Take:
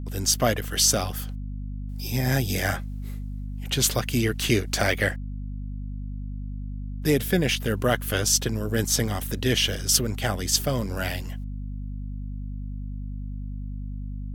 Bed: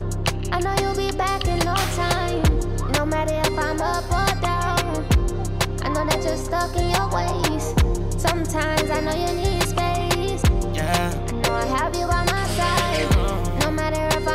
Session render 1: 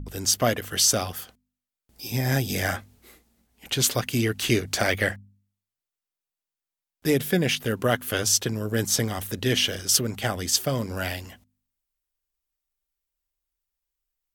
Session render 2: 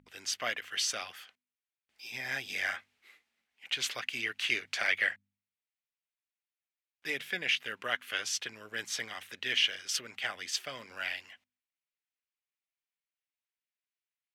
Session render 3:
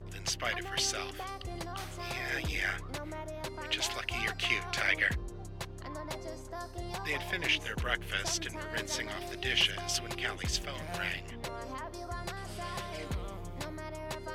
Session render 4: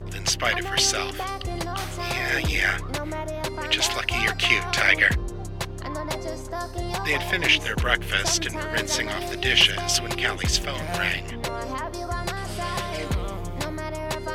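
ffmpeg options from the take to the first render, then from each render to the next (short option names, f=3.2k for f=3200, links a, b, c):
-af "bandreject=f=50:t=h:w=4,bandreject=f=100:t=h:w=4,bandreject=f=150:t=h:w=4,bandreject=f=200:t=h:w=4,bandreject=f=250:t=h:w=4"
-af "bandpass=f=2.3k:t=q:w=1.8:csg=0"
-filter_complex "[1:a]volume=-19dB[a];[0:a][a]amix=inputs=2:normalize=0"
-af "volume=10.5dB"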